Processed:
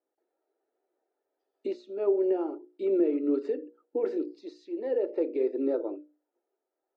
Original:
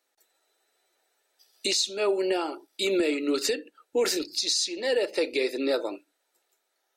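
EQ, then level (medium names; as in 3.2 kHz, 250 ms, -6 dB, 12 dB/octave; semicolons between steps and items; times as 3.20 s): ladder band-pass 380 Hz, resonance 40%; hum notches 60/120/180/240/300/360/420/480/540/600 Hz; +9.0 dB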